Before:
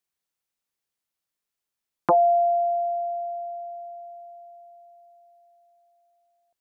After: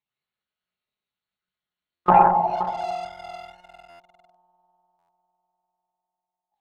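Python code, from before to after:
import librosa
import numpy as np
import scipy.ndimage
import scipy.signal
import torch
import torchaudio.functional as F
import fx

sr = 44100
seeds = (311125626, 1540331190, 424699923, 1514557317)

y = fx.spec_expand(x, sr, power=3.2)
y = fx.lpc_monotone(y, sr, seeds[0], pitch_hz=180.0, order=10)
y = fx.echo_multitap(y, sr, ms=(107, 123, 147, 170, 187, 523), db=(-7.5, -13.5, -7.5, -8.5, -12.5, -16.0))
y = fx.room_shoebox(y, sr, seeds[1], volume_m3=430.0, walls='furnished', distance_m=1.4)
y = fx.leveller(y, sr, passes=1)
y = fx.formant_shift(y, sr, semitones=3)
y = fx.highpass(y, sr, hz=120.0, slope=6)
y = fx.env_lowpass_down(y, sr, base_hz=1600.0, full_db=-18.0)
y = fx.buffer_glitch(y, sr, at_s=(1.94, 3.89, 4.98), block=512, repeats=8)
y = y * 10.0 ** (2.0 / 20.0)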